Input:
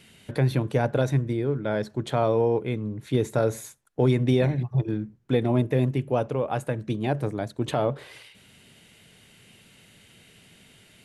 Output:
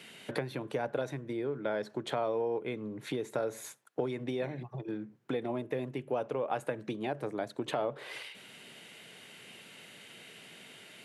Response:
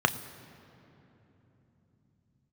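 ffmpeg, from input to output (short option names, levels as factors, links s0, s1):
-af "acompressor=threshold=0.0224:ratio=6,highpass=f=120:w=0.5412,highpass=f=120:w=1.3066,bass=f=250:g=-11,treble=f=4000:g=-5,volume=1.78"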